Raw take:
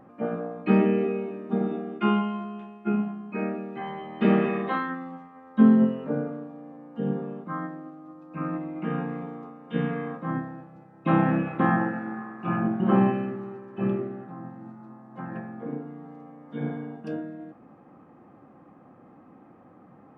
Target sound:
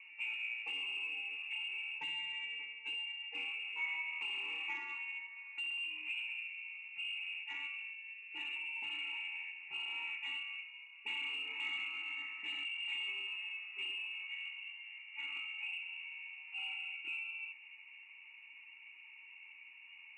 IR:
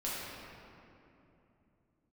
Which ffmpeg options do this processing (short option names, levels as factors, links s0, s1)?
-filter_complex "[0:a]acrossover=split=150|2300[s0][s1][s2];[s0]acompressor=threshold=0.0178:ratio=4[s3];[s1]acompressor=threshold=0.0224:ratio=4[s4];[s2]acompressor=threshold=0.002:ratio=4[s5];[s3][s4][s5]amix=inputs=3:normalize=0,lowpass=f=2600:t=q:w=0.5098,lowpass=f=2600:t=q:w=0.6013,lowpass=f=2600:t=q:w=0.9,lowpass=f=2600:t=q:w=2.563,afreqshift=-3000,flanger=delay=6.3:depth=5.6:regen=61:speed=0.48:shape=triangular,asoftclip=type=tanh:threshold=0.0178,asplit=3[s6][s7][s8];[s6]bandpass=f=300:t=q:w=8,volume=1[s9];[s7]bandpass=f=870:t=q:w=8,volume=0.501[s10];[s8]bandpass=f=2240:t=q:w=8,volume=0.355[s11];[s9][s10][s11]amix=inputs=3:normalize=0,volume=5.96"